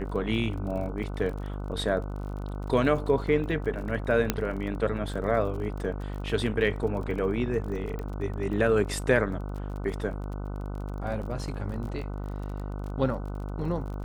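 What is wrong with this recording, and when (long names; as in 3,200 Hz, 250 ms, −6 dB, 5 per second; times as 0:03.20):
mains buzz 50 Hz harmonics 30 −34 dBFS
surface crackle 34 per second −37 dBFS
0:04.30: click −8 dBFS
0:07.99: click −24 dBFS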